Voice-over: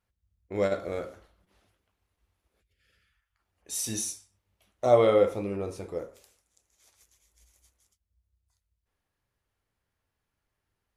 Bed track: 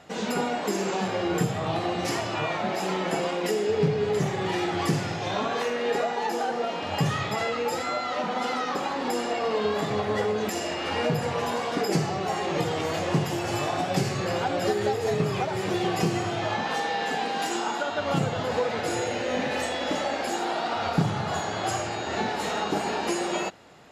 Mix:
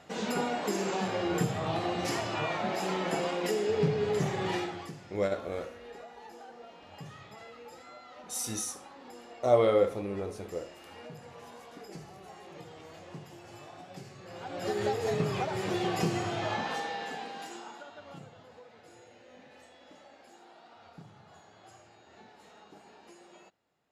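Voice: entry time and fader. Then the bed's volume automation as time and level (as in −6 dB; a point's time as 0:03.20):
4.60 s, −3.0 dB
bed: 0:04.56 −4 dB
0:04.95 −21 dB
0:14.23 −21 dB
0:14.80 −4.5 dB
0:16.58 −4.5 dB
0:18.57 −27 dB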